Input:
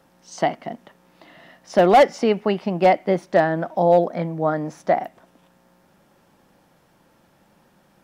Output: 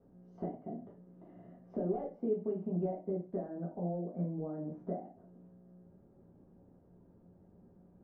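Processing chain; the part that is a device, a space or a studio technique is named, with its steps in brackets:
television next door (downward compressor 5 to 1, threshold −31 dBFS, peak gain reduction 18.5 dB; low-pass filter 330 Hz 12 dB per octave; convolution reverb RT60 0.35 s, pre-delay 3 ms, DRR −5.5 dB)
level −4 dB

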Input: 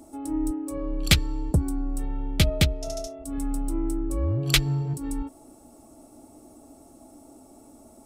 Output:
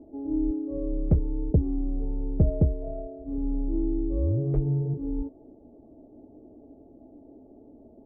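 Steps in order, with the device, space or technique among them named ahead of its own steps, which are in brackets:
under water (low-pass filter 620 Hz 24 dB per octave; parametric band 430 Hz +6 dB 0.33 octaves)

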